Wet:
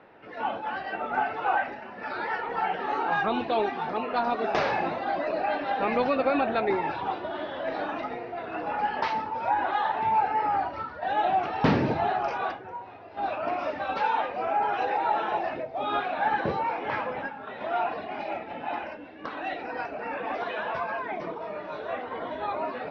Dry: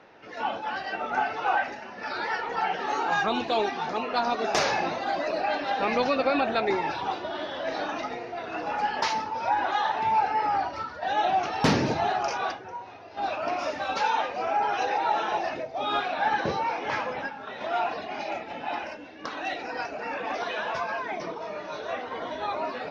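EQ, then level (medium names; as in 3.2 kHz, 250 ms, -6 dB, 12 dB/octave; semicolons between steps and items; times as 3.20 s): distance through air 310 m; +1.0 dB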